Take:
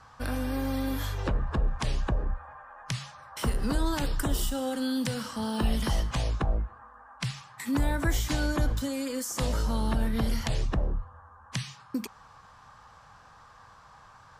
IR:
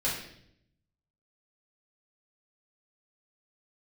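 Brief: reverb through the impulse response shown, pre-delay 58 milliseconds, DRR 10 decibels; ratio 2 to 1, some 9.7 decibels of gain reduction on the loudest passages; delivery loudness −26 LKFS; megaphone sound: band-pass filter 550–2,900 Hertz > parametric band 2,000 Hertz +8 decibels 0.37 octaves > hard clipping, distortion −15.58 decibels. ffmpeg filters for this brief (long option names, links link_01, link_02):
-filter_complex "[0:a]acompressor=threshold=-40dB:ratio=2,asplit=2[link_01][link_02];[1:a]atrim=start_sample=2205,adelay=58[link_03];[link_02][link_03]afir=irnorm=-1:irlink=0,volume=-18dB[link_04];[link_01][link_04]amix=inputs=2:normalize=0,highpass=550,lowpass=2900,equalizer=frequency=2000:width_type=o:width=0.37:gain=8,asoftclip=type=hard:threshold=-35dB,volume=20dB"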